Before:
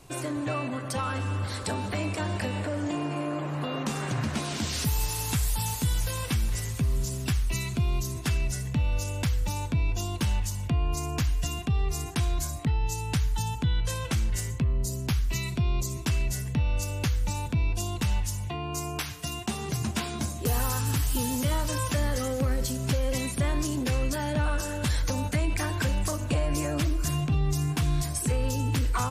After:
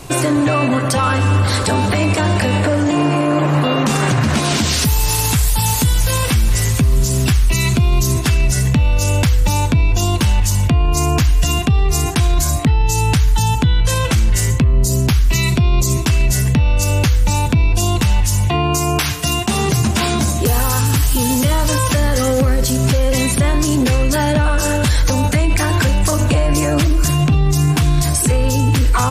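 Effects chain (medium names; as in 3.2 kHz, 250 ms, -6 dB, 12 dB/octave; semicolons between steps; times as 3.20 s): loudness maximiser +24 dB; trim -6 dB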